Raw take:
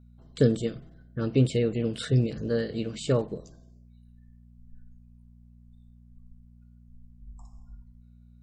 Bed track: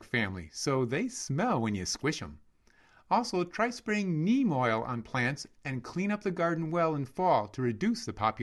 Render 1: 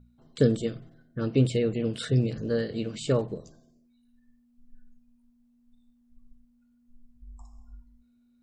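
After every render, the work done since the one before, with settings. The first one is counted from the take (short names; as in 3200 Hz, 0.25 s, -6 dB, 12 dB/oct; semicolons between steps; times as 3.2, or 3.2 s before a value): de-hum 60 Hz, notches 3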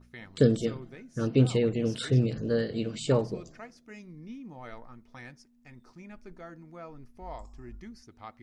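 add bed track -16.5 dB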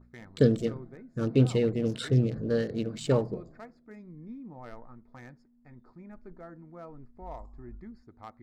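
Wiener smoothing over 15 samples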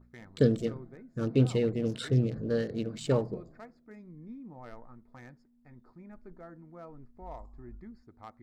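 gain -2 dB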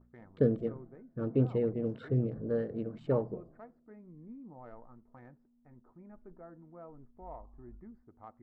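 LPF 1100 Hz 12 dB/oct; low shelf 350 Hz -5 dB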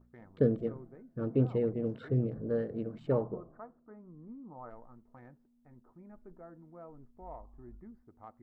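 3.21–4.7 synth low-pass 1200 Hz, resonance Q 2.6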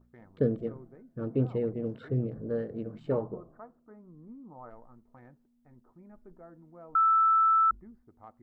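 2.84–3.26 doubler 19 ms -10.5 dB; 6.95–7.71 bleep 1320 Hz -19.5 dBFS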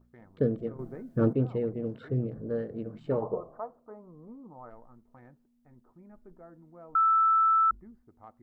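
0.79–1.33 gain +11 dB; 3.22–4.47 band shelf 720 Hz +11 dB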